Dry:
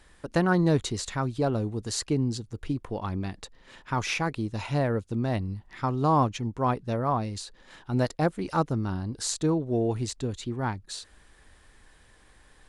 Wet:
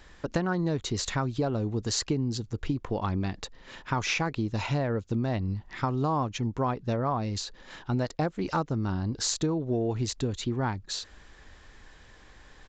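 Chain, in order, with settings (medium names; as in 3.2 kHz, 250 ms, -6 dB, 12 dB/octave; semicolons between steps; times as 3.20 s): resampled via 16 kHz; compression 6:1, threshold -29 dBFS, peak gain reduction 11 dB; trim +4.5 dB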